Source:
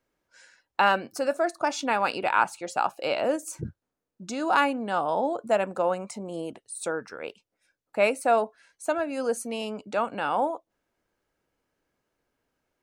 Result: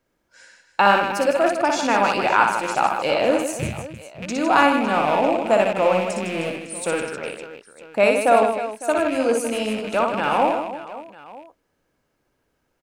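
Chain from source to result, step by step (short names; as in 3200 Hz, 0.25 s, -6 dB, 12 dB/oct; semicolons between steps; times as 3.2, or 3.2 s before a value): rattling part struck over -42 dBFS, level -26 dBFS; low shelf 480 Hz +3 dB; on a send: reverse bouncing-ball echo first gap 60 ms, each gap 1.6×, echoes 5; on the sum: gain +4 dB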